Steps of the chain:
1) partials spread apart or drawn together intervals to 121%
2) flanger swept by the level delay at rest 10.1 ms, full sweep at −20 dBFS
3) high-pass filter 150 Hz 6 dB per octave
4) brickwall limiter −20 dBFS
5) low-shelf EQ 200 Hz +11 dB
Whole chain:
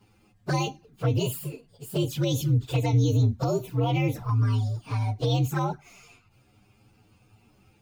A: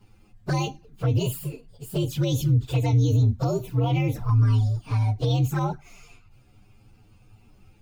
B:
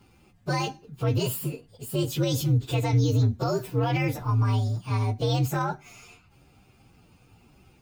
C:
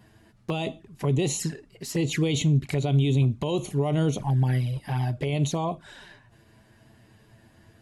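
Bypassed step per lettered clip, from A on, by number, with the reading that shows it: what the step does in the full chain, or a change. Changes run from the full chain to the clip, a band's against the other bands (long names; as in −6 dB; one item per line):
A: 3, 125 Hz band +3.5 dB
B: 2, 2 kHz band +2.0 dB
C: 1, 8 kHz band +4.5 dB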